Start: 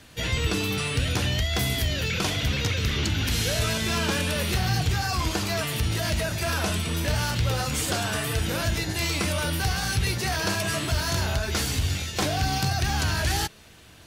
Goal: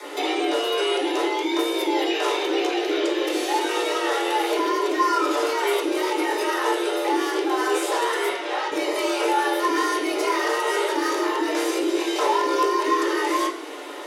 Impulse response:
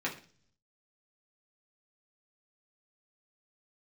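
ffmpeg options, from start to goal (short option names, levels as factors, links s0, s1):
-filter_complex "[0:a]alimiter=limit=0.0631:level=0:latency=1:release=229,acompressor=threshold=0.0178:ratio=6,afreqshift=260,asettb=1/sr,asplit=3[s0][s1][s2];[s0]atrim=end=8.294[s3];[s1]atrim=start=8.29:end=8.72,asetpts=PTS-STARTPTS,afade=t=in:d=0.004:c=qsin,afade=t=out:st=0.426:d=0.004:c=qsin,highpass=640,lowpass=5200[s4];[s2]atrim=start=8.716[s5];[s3][s4]acrossfade=d=0.004:c1=hsin:c2=qsin[s6];[s6][s5]acrossfade=d=0.004:c1=qsin:c2=hsin[s7];[1:a]atrim=start_sample=2205,asetrate=24255,aresample=44100[s8];[s7][s8]afir=irnorm=-1:irlink=0,volume=2.37"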